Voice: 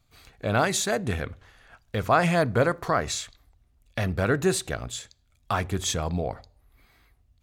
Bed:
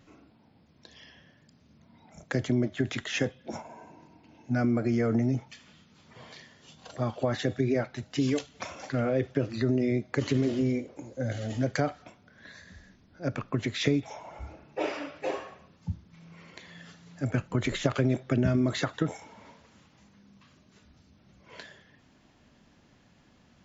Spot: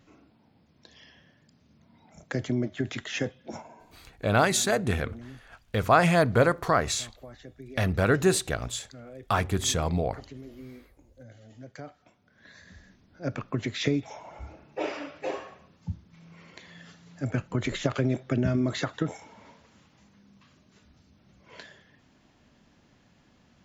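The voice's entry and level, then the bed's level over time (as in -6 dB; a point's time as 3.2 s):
3.80 s, +1.0 dB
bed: 3.64 s -1.5 dB
4.28 s -18 dB
11.61 s -18 dB
12.69 s -0.5 dB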